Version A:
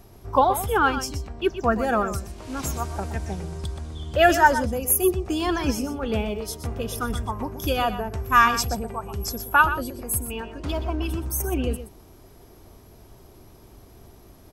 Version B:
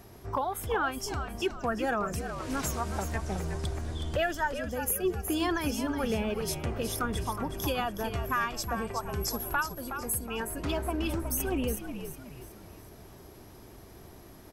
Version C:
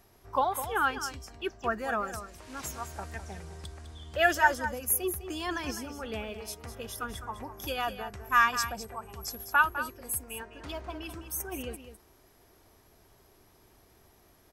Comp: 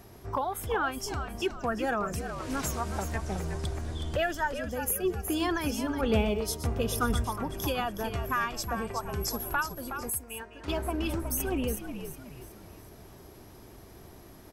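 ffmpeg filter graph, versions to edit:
-filter_complex "[1:a]asplit=3[s0][s1][s2];[s0]atrim=end=6.012[s3];[0:a]atrim=start=6.008:end=7.242[s4];[s1]atrim=start=7.238:end=10.102[s5];[2:a]atrim=start=10.098:end=10.682[s6];[s2]atrim=start=10.678[s7];[s3][s4]acrossfade=d=0.004:c1=hsin:c2=hsin[s8];[s8][s5]acrossfade=d=0.004:c1=hsin:c2=hsin[s9];[s9][s6]acrossfade=d=0.004:c1=hsin:c2=hsin[s10];[s10][s7]acrossfade=d=0.004:c1=hsin:c2=hsin"

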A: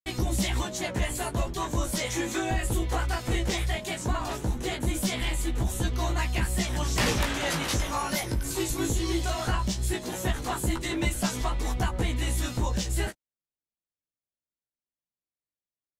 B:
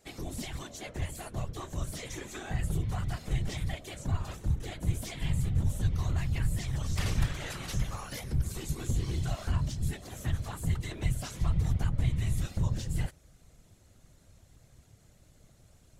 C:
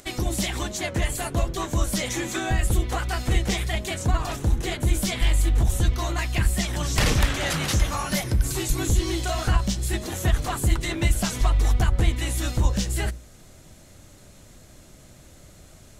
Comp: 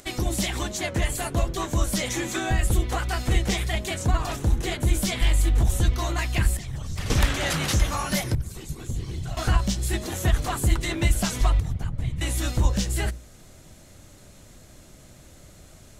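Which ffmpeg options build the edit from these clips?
-filter_complex "[1:a]asplit=3[s0][s1][s2];[2:a]asplit=4[s3][s4][s5][s6];[s3]atrim=end=6.572[s7];[s0]atrim=start=6.568:end=7.102[s8];[s4]atrim=start=7.098:end=8.352[s9];[s1]atrim=start=8.348:end=9.372[s10];[s5]atrim=start=9.368:end=11.602[s11];[s2]atrim=start=11.598:end=12.212[s12];[s6]atrim=start=12.208[s13];[s7][s8]acrossfade=d=0.004:c1=hsin:c2=hsin[s14];[s14][s9]acrossfade=d=0.004:c1=hsin:c2=hsin[s15];[s15][s10]acrossfade=d=0.004:c1=hsin:c2=hsin[s16];[s16][s11]acrossfade=d=0.004:c1=hsin:c2=hsin[s17];[s17][s12]acrossfade=d=0.004:c1=hsin:c2=hsin[s18];[s18][s13]acrossfade=d=0.004:c1=hsin:c2=hsin"

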